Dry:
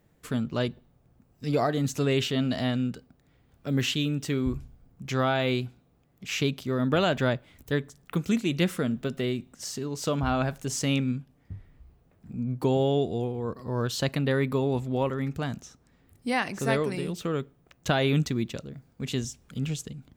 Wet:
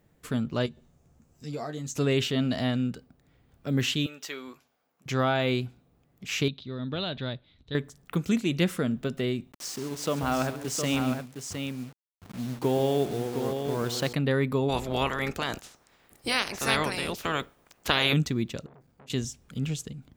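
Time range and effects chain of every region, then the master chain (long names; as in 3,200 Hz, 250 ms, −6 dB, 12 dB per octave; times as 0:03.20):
0:00.66–0:01.96: parametric band 6,800 Hz +11.5 dB 0.7 octaves + downward compressor 1.5 to 1, threshold −53 dBFS + double-tracking delay 13 ms −6.5 dB
0:04.06–0:05.06: high-pass filter 710 Hz + parametric band 8,800 Hz −11 dB 0.25 octaves + double-tracking delay 12 ms −12 dB
0:06.48–0:07.75: transistor ladder low-pass 4,100 Hz, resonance 80% + low-shelf EQ 290 Hz +7.5 dB
0:09.52–0:14.13: hold until the input has moved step −37.5 dBFS + high-pass filter 160 Hz 6 dB per octave + multi-tap delay 135/712 ms −13.5/−6.5 dB
0:14.68–0:18.12: ceiling on every frequency bin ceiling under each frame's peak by 22 dB + dynamic equaliser 8,200 Hz, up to −7 dB, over −54 dBFS, Q 4.4
0:18.66–0:19.10: downward compressor 16 to 1, threshold −42 dBFS + saturating transformer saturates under 1,200 Hz
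whole clip: no processing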